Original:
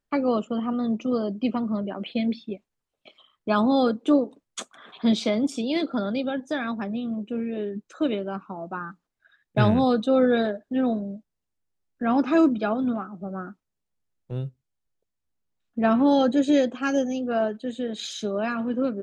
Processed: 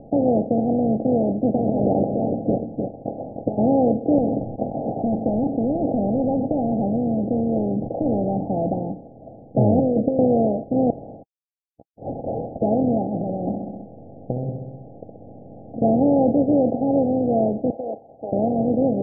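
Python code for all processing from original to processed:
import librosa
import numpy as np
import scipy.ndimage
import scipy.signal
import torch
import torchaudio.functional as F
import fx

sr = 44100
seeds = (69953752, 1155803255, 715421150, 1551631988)

y = fx.spec_clip(x, sr, under_db=14, at=(1.56, 3.57), fade=0.02)
y = fx.over_compress(y, sr, threshold_db=-31.0, ratio=-0.5, at=(1.56, 3.57), fade=0.02)
y = fx.echo_single(y, sr, ms=303, db=-12.5, at=(1.56, 3.57), fade=0.02)
y = fx.chain(y, sr, fx.clip_hard(threshold_db=-23.5),
    fx.peak_eq(hz=460.0, db=-8.0, octaves=1.7),
    fx.env_flatten(amount_pct=70), at=(4.18, 8.78))
y = fx.chain(y, sr, fx.steep_lowpass(hz=650.0, slope=96),
    fx.low_shelf(hz=130.0, db=-9.5),
    fx.over_compress(threshold_db=-25.0, ratio=-0.5), at=(9.79, 10.19))
y = fx.chain(y, sr, fx.cvsd(bps=64000),
    fx.freq_invert(carrier_hz=3100), at=(10.9, 12.62))
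y = fx.chain(y, sr, fx.over_compress(threshold_db=-40.0, ratio=-1.0),
    fx.echo_feedback(ms=65, feedback_pct=52, wet_db=-12.0), at=(13.14, 15.82))
y = fx.chain(y, sr, fx.highpass(hz=810.0, slope=24),
    fx.over_compress(threshold_db=-47.0, ratio=-1.0), at=(17.7, 18.33))
y = fx.bin_compress(y, sr, power=0.4)
y = scipy.signal.sosfilt(scipy.signal.cheby1(8, 1.0, 810.0, 'lowpass', fs=sr, output='sos'), y)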